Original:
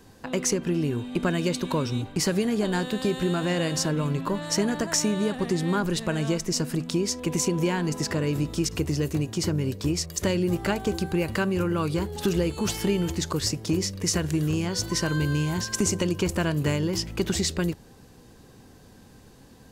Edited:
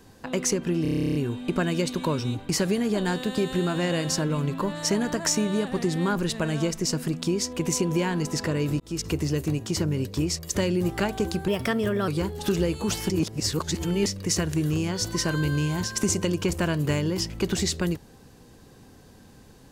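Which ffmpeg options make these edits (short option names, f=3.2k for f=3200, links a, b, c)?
-filter_complex "[0:a]asplit=17[a][b][c][d][e][f][g][h][i][j][k][l][m][n][o][p][q];[a]atrim=end=0.852[r];[b]atrim=start=0.818:end=0.852[s];[c]atrim=start=0.818:end=0.852[t];[d]atrim=start=0.818:end=0.852[u];[e]atrim=start=0.818:end=0.852[v];[f]atrim=start=0.818:end=0.852[w];[g]atrim=start=0.818:end=0.852[x];[h]atrim=start=0.818:end=0.852[y];[i]atrim=start=0.818:end=0.852[z];[j]atrim=start=0.818:end=0.852[aa];[k]atrim=start=0.818:end=0.852[ab];[l]atrim=start=0.818:end=8.47,asetpts=PTS-STARTPTS,afade=t=out:st=7.648:d=0.004:c=hsin[ac];[m]atrim=start=8.47:end=11.154,asetpts=PTS-STARTPTS,afade=t=in:d=0.26[ad];[n]atrim=start=11.15:end=11.85,asetpts=PTS-STARTPTS,asetrate=51597,aresample=44100[ae];[o]atrim=start=11.846:end=12.872[af];[p]atrim=start=12.868:end=13.832,asetpts=PTS-STARTPTS,areverse[ag];[q]atrim=start=13.828[ah];[r][s]acrossfade=d=0.004:c1=hsin:c2=hsin[ai];[ai][t]acrossfade=d=0.004:c1=hsin:c2=hsin[aj];[aj][u]acrossfade=d=0.004:c1=hsin:c2=hsin[ak];[ak][v]acrossfade=d=0.004:c1=hsin:c2=hsin[al];[al][w]acrossfade=d=0.004:c1=hsin:c2=hsin[am];[am][x]acrossfade=d=0.004:c1=hsin:c2=hsin[an];[an][y]acrossfade=d=0.004:c1=hsin:c2=hsin[ao];[ao][z]acrossfade=d=0.004:c1=hsin:c2=hsin[ap];[ap][aa]acrossfade=d=0.004:c1=hsin:c2=hsin[aq];[aq][ab]acrossfade=d=0.004:c1=hsin:c2=hsin[ar];[ac][ad]concat=n=2:v=0:a=1[as];[ar][as]acrossfade=d=0.004:c1=hsin:c2=hsin[at];[at][ae]acrossfade=d=0.004:c1=hsin:c2=hsin[au];[au][af]acrossfade=d=0.004:c1=hsin:c2=hsin[av];[av][ag]acrossfade=d=0.004:c1=hsin:c2=hsin[aw];[aw][ah]acrossfade=d=0.004:c1=hsin:c2=hsin"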